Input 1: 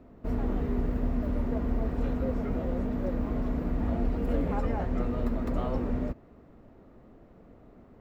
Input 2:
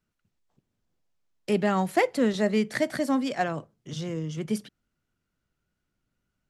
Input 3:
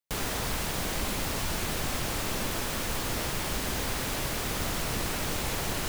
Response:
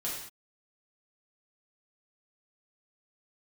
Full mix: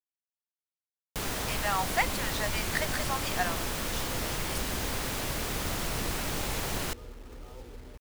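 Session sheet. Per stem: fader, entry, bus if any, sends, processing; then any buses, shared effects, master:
-14.5 dB, 1.85 s, no send, compression 6:1, threshold -28 dBFS, peak gain reduction 6 dB; comb 2.3 ms, depth 61%
0.0 dB, 0.00 s, no send, inverse Chebyshev high-pass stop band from 380 Hz
-1.5 dB, 1.05 s, no send, none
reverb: none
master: bit crusher 9-bit

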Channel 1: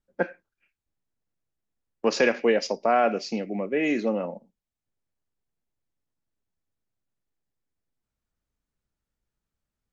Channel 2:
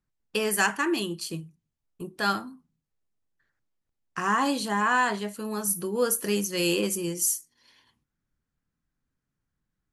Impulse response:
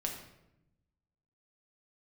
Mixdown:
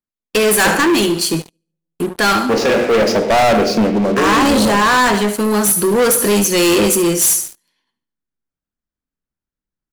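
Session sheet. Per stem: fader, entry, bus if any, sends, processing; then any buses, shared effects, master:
0.0 dB, 0.45 s, send -6 dB, no echo send, treble shelf 2.5 kHz -8.5 dB; hard clipper -18 dBFS, distortion -14 dB; auto duck -17 dB, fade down 0.35 s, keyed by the second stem
0.0 dB, 0.00 s, send -23 dB, echo send -12.5 dB, resonant low shelf 170 Hz -8 dB, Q 1.5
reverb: on, RT60 0.85 s, pre-delay 5 ms
echo: feedback delay 72 ms, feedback 42%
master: waveshaping leveller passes 5

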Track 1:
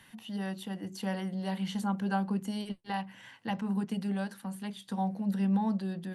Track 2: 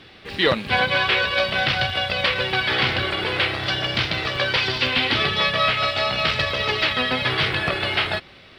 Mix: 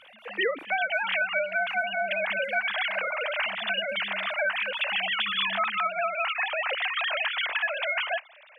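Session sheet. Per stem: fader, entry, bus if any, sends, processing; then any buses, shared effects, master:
-16.5 dB, 0.00 s, no send, none
-2.0 dB, 0.00 s, no send, formants replaced by sine waves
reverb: none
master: compression 6:1, threshold -24 dBFS, peak gain reduction 11.5 dB

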